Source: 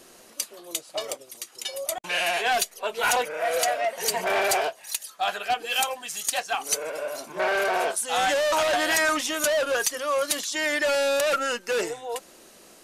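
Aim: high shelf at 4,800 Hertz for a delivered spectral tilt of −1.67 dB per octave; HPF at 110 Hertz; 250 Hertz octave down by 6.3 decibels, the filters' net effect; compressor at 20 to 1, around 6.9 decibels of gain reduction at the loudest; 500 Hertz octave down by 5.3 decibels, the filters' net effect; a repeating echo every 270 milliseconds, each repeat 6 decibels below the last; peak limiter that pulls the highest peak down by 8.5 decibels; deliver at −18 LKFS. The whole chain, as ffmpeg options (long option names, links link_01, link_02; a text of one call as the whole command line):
ffmpeg -i in.wav -af "highpass=110,equalizer=frequency=250:width_type=o:gain=-6,equalizer=frequency=500:width_type=o:gain=-5.5,highshelf=frequency=4800:gain=-7,acompressor=threshold=-28dB:ratio=20,alimiter=level_in=3dB:limit=-24dB:level=0:latency=1,volume=-3dB,aecho=1:1:270|540|810|1080|1350|1620:0.501|0.251|0.125|0.0626|0.0313|0.0157,volume=16.5dB" out.wav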